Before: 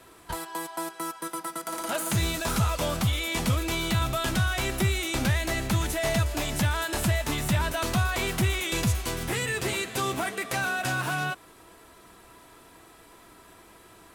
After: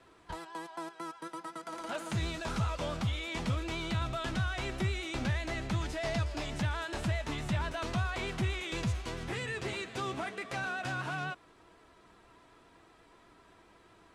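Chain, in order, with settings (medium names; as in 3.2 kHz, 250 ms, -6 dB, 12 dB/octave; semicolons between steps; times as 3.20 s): 5.82–6.46 s: peaking EQ 4.9 kHz +6.5 dB 0.24 oct; vibrato 8 Hz 45 cents; distance through air 90 m; trim -7 dB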